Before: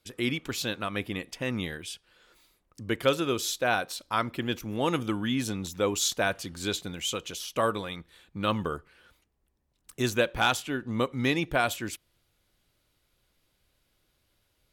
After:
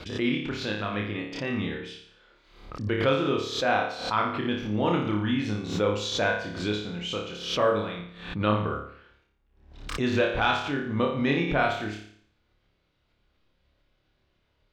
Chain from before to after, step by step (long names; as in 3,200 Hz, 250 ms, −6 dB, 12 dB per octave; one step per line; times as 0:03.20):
high-frequency loss of the air 210 metres
flutter between parallel walls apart 4.9 metres, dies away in 0.6 s
background raised ahead of every attack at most 80 dB per second